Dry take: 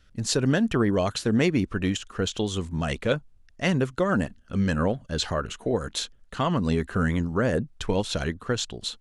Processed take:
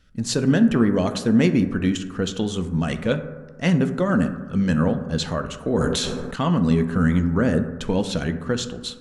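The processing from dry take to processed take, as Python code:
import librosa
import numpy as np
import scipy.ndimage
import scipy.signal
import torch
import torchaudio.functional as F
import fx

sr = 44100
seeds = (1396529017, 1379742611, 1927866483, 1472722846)

y = fx.peak_eq(x, sr, hz=220.0, db=6.5, octaves=0.8)
y = fx.rev_fdn(y, sr, rt60_s=1.4, lf_ratio=1.0, hf_ratio=0.3, size_ms=36.0, drr_db=7.5)
y = fx.sustainer(y, sr, db_per_s=23.0, at=(5.64, 6.36))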